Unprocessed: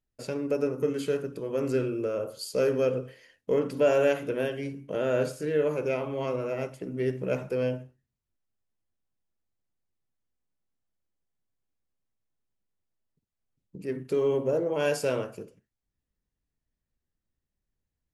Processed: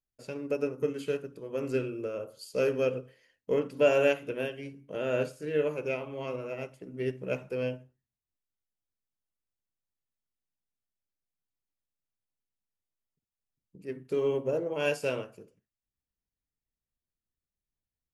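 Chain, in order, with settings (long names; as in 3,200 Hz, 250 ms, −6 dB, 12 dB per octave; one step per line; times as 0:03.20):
dynamic equaliser 2,700 Hz, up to +7 dB, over −54 dBFS, Q 3.5
expander for the loud parts 1.5 to 1, over −37 dBFS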